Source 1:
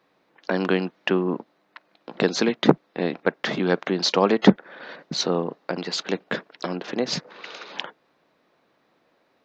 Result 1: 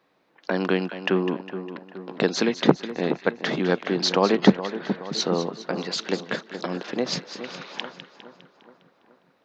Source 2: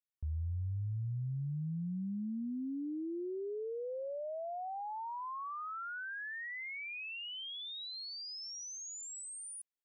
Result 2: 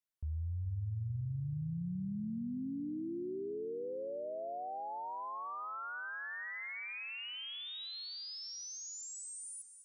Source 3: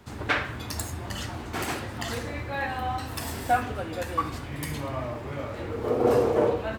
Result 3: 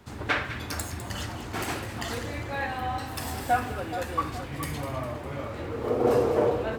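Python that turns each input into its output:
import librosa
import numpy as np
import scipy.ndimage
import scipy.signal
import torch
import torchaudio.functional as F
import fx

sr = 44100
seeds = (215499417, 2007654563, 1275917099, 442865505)

y = fx.echo_split(x, sr, split_hz=1500.0, low_ms=422, high_ms=203, feedback_pct=52, wet_db=-11)
y = F.gain(torch.from_numpy(y), -1.0).numpy()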